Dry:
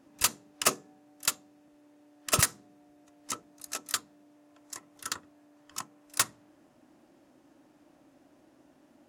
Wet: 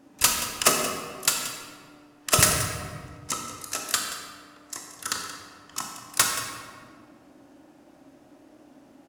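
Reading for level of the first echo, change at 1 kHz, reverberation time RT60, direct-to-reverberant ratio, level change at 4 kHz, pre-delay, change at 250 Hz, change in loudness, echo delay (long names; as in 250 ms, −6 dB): −13.5 dB, +7.5 dB, 1.9 s, 1.0 dB, +7.0 dB, 20 ms, +8.0 dB, +6.0 dB, 178 ms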